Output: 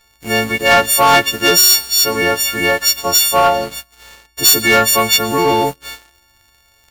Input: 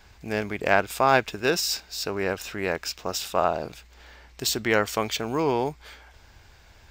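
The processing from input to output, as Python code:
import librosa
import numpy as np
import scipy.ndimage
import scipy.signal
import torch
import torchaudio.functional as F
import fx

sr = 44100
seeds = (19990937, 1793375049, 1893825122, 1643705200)

y = fx.freq_snap(x, sr, grid_st=4)
y = fx.rev_double_slope(y, sr, seeds[0], early_s=0.54, late_s=2.0, knee_db=-18, drr_db=15.5)
y = fx.leveller(y, sr, passes=3)
y = y * 10.0 ** (-1.5 / 20.0)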